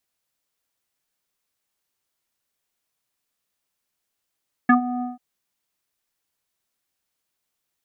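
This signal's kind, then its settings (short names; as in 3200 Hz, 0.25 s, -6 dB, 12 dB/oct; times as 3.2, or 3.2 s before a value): synth note square B3 24 dB/oct, low-pass 960 Hz, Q 5.6, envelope 1 oct, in 0.07 s, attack 6.2 ms, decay 0.11 s, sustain -14 dB, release 0.16 s, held 0.33 s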